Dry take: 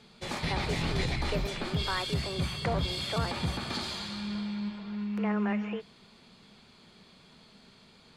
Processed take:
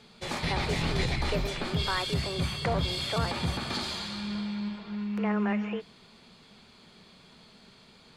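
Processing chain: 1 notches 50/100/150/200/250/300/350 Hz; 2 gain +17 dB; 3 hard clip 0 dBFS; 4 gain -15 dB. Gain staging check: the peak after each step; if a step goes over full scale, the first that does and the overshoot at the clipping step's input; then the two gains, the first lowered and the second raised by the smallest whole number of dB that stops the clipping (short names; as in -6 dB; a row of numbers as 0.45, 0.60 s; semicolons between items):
-19.5, -2.5, -2.5, -17.5 dBFS; no overload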